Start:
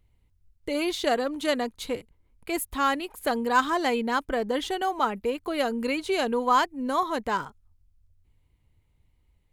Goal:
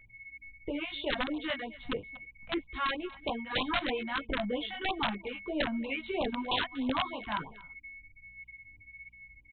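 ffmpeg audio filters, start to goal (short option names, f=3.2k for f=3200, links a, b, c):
-filter_complex "[0:a]acrossover=split=190[a][b];[a]acontrast=42[c];[c][b]amix=inputs=2:normalize=0,aeval=exprs='val(0)+0.00891*sin(2*PI*2200*n/s)':c=same,acrossover=split=1200[d][e];[d]aeval=exprs='val(0)*(1-0.7/2+0.7/2*cos(2*PI*1.6*n/s))':c=same[f];[e]aeval=exprs='val(0)*(1-0.7/2-0.7/2*cos(2*PI*1.6*n/s))':c=same[g];[f][g]amix=inputs=2:normalize=0,aeval=exprs='val(0)+0.000631*(sin(2*PI*60*n/s)+sin(2*PI*2*60*n/s)/2+sin(2*PI*3*60*n/s)/3+sin(2*PI*4*60*n/s)/4+sin(2*PI*5*60*n/s)/5)':c=same,flanger=delay=18:depth=2.1:speed=1.2,aresample=8000,aeval=exprs='(mod(12.6*val(0)+1,2)-1)/12.6':c=same,aresample=44100,aecho=1:1:238:0.1,afftfilt=real='re*(1-between(b*sr/1024,360*pow(1700/360,0.5+0.5*sin(2*PI*3.1*pts/sr))/1.41,360*pow(1700/360,0.5+0.5*sin(2*PI*3.1*pts/sr))*1.41))':imag='im*(1-between(b*sr/1024,360*pow(1700/360,0.5+0.5*sin(2*PI*3.1*pts/sr))/1.41,360*pow(1700/360,0.5+0.5*sin(2*PI*3.1*pts/sr))*1.41))':win_size=1024:overlap=0.75"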